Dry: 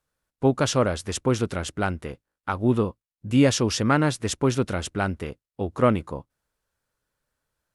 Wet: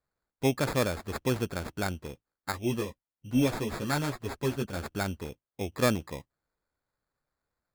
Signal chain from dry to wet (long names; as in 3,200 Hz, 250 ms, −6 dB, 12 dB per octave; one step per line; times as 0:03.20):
decimation without filtering 15×
0:02.52–0:04.77: multi-voice chorus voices 6, 1.1 Hz, delay 11 ms, depth 3.6 ms
level −6 dB